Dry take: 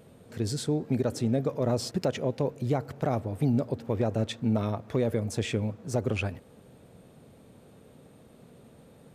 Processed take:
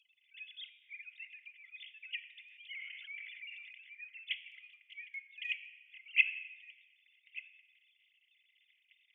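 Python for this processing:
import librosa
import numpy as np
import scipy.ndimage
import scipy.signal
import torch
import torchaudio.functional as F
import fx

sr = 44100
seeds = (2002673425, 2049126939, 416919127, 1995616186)

y = fx.sine_speech(x, sr)
y = fx.transient(y, sr, attack_db=-3, sustain_db=-8, at=(4.51, 5.88))
y = scipy.signal.sosfilt(scipy.signal.cheby1(6, 6, 2000.0, 'highpass', fs=sr, output='sos'), y)
y = y + 10.0 ** (-19.0 / 20.0) * np.pad(y, (int(1182 * sr / 1000.0), 0))[:len(y)]
y = fx.room_shoebox(y, sr, seeds[0], volume_m3=1200.0, walls='mixed', distance_m=0.56)
y = fx.sustainer(y, sr, db_per_s=26.0, at=(2.43, 3.95))
y = y * 10.0 ** (9.5 / 20.0)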